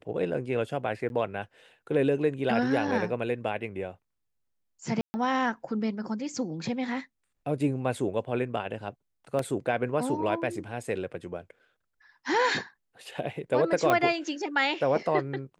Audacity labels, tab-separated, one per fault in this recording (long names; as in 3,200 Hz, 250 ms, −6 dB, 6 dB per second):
1.090000	1.100000	drop-out 11 ms
5.010000	5.140000	drop-out 130 ms
9.390000	9.390000	drop-out 2.4 ms
13.900000	13.900000	click −11 dBFS